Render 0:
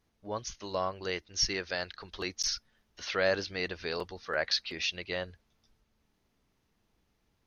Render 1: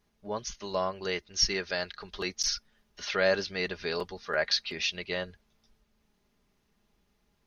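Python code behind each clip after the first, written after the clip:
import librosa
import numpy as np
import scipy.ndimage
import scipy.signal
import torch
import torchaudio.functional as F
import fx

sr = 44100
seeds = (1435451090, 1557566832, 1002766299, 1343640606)

y = x + 0.42 * np.pad(x, (int(4.9 * sr / 1000.0), 0))[:len(x)]
y = y * 10.0 ** (1.5 / 20.0)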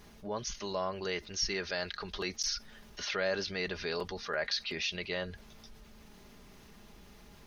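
y = fx.env_flatten(x, sr, amount_pct=50)
y = y * 10.0 ** (-8.0 / 20.0)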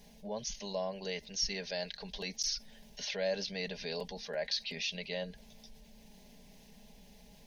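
y = fx.fixed_phaser(x, sr, hz=340.0, stages=6)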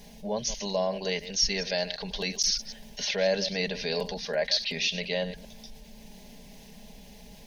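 y = fx.reverse_delay(x, sr, ms=109, wet_db=-13.0)
y = y * 10.0 ** (8.5 / 20.0)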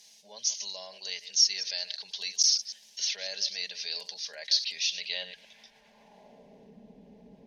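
y = fx.filter_sweep_bandpass(x, sr, from_hz=5800.0, to_hz=330.0, start_s=4.9, end_s=6.77, q=1.4)
y = y * 10.0 ** (3.5 / 20.0)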